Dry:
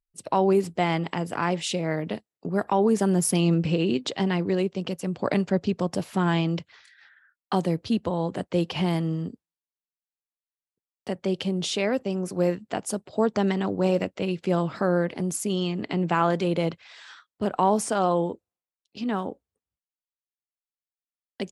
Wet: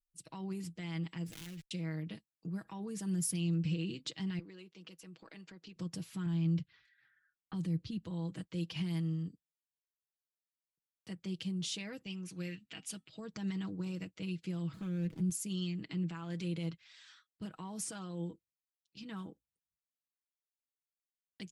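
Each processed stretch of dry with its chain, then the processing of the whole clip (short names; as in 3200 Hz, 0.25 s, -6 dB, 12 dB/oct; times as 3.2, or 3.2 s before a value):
1.26–1.71 switching dead time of 0.27 ms + bell 1100 Hz -8 dB 0.86 oct + compressor 12:1, threshold -29 dBFS
4.39–5.76 HPF 360 Hz + bell 10000 Hz -7.5 dB 1.4 oct + compressor 2.5:1, threshold -35 dBFS
6.26–8.03 de-esser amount 100% + low shelf 260 Hz +10 dB + low-pass opened by the level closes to 1800 Hz, open at -15 dBFS
12.06–13.2 bell 2700 Hz +14.5 dB 1.3 oct + resonator 260 Hz, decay 0.2 s, harmonics odd, mix 40%
14.73–15.3 median filter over 25 samples + low shelf 300 Hz +9.5 dB
whole clip: limiter -17 dBFS; passive tone stack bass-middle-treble 6-0-2; comb 6.2 ms, depth 59%; gain +5 dB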